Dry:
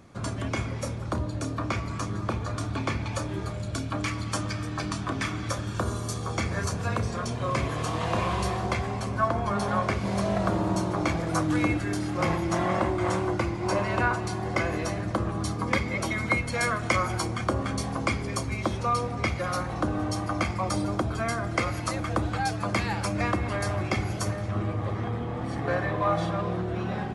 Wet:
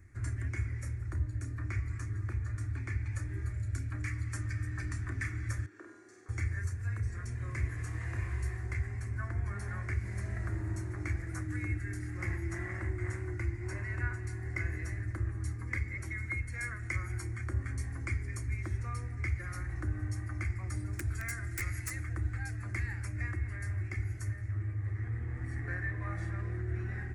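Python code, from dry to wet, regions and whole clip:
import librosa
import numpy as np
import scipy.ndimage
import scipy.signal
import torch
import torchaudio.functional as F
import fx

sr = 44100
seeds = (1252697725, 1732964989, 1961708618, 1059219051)

y = fx.chain(x, sr, fx.ladder_highpass(hz=290.0, resonance_pct=45),
    fx.air_absorb(metres=110.0),
    fx.room_flutter(wall_m=8.3, rt60_s=0.75), at=(5.66, 6.29))
y = fx.chain(y, sr, fx.high_shelf(hz=2400.0, db=10.5),
    fx.overflow_wrap(gain_db=15.5), at=(20.93, 22.04))
y = fx.curve_eq(y, sr, hz=(100.0, 180.0, 350.0, 520.0, 1100.0, 1900.0, 3200.0, 7400.0), db=(0, -24, -13, -28, -24, -2, -30, -11))
y = fx.rider(y, sr, range_db=10, speed_s=0.5)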